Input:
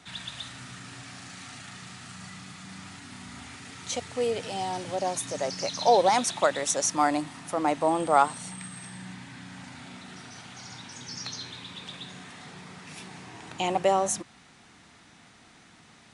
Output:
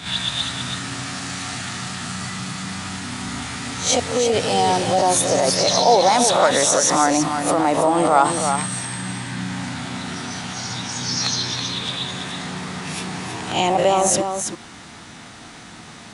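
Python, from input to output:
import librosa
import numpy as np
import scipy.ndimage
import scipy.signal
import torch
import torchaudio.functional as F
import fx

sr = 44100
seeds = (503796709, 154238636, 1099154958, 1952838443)

p1 = fx.spec_swells(x, sr, rise_s=0.34)
p2 = fx.peak_eq(p1, sr, hz=2300.0, db=-2.5, octaves=0.77)
p3 = fx.over_compress(p2, sr, threshold_db=-30.0, ratio=-0.5)
p4 = p2 + (p3 * 10.0 ** (0.5 / 20.0))
p5 = p4 + 10.0 ** (-7.0 / 20.0) * np.pad(p4, (int(327 * sr / 1000.0), 0))[:len(p4)]
y = p5 * 10.0 ** (4.5 / 20.0)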